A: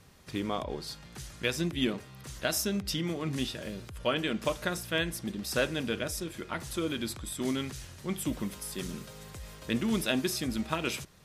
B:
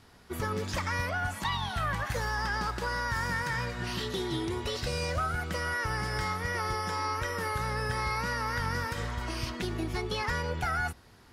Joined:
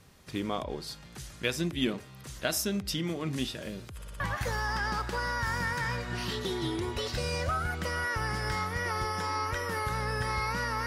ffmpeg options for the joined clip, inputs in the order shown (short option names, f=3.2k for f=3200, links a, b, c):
-filter_complex "[0:a]apad=whole_dur=10.86,atrim=end=10.86,asplit=4[a][b][c][d];[a]atrim=end=4.022[e];[b]atrim=start=3.958:end=4.022[f];[c]atrim=start=3.958:end=4.022[g];[d]atrim=start=3.958:end=4.022[h];[1:a]atrim=start=1.888:end=8.55[i];[e][f]acrossfade=d=0.004:c1=hsin:c2=hsin[j];[j][g]acrossfade=d=0.004:c1=hsin:c2=hsin[k];[k][h]acrossfade=d=0.004:c1=hsin:c2=hsin[l];[l][i]acrossfade=d=0.004:c1=hsin:c2=hsin"